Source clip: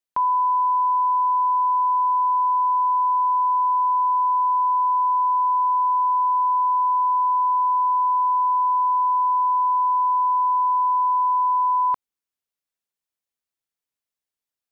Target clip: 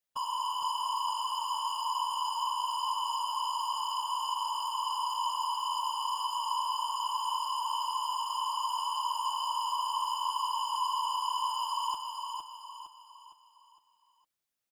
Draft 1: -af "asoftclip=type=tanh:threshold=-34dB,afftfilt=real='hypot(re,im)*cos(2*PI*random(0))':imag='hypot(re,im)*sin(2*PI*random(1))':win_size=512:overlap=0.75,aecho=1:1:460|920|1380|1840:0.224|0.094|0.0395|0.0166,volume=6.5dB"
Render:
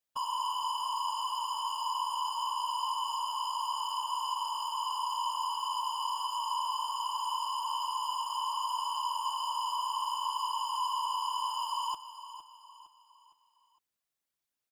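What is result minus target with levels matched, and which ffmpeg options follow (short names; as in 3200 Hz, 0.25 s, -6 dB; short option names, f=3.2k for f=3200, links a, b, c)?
echo-to-direct -8 dB
-af "asoftclip=type=tanh:threshold=-34dB,afftfilt=real='hypot(re,im)*cos(2*PI*random(0))':imag='hypot(re,im)*sin(2*PI*random(1))':win_size=512:overlap=0.75,aecho=1:1:460|920|1380|1840|2300:0.562|0.236|0.0992|0.0417|0.0175,volume=6.5dB"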